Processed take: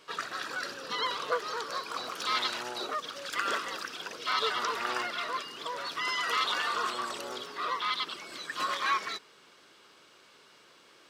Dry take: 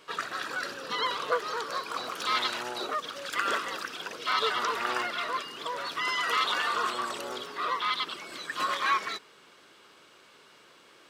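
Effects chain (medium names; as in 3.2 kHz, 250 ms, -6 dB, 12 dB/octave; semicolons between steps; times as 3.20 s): peaking EQ 5.2 kHz +3.5 dB 0.82 oct; trim -2.5 dB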